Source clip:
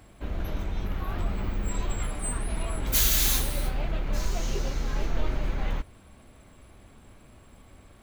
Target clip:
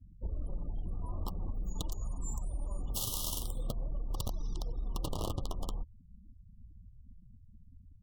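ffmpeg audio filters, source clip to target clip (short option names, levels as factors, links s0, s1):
-af "lowshelf=f=260:g=7,aeval=exprs='(mod(4.22*val(0)+1,2)-1)/4.22':c=same,flanger=delay=0.7:depth=9.3:regen=-37:speed=0.45:shape=sinusoidal,asetrate=39289,aresample=44100,atempo=1.12246,asuperstop=centerf=1900:order=20:qfactor=1.2,afftfilt=real='re*gte(hypot(re,im),0.01)':imag='im*gte(hypot(re,im),0.01)':win_size=1024:overlap=0.75,acompressor=threshold=0.0398:ratio=6,volume=0.631"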